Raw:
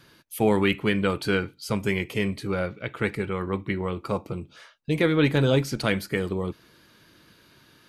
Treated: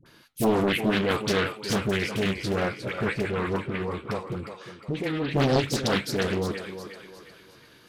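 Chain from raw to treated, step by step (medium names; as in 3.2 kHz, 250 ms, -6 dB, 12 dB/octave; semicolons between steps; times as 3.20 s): dynamic bell 5.5 kHz, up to +5 dB, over -49 dBFS, Q 1.3; in parallel at -1 dB: peak limiter -16 dBFS, peak gain reduction 7.5 dB; 3.55–5.34 s: on the sum: compression 4:1, threshold -22 dBFS, peak gain reduction 8.5 dB; flange 1.8 Hz, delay 2 ms, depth 8.9 ms, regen -79%; phase dispersion highs, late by 60 ms, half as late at 780 Hz; on a send: thinning echo 358 ms, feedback 45%, high-pass 300 Hz, level -8 dB; on the sum: loudspeaker Doppler distortion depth 0.78 ms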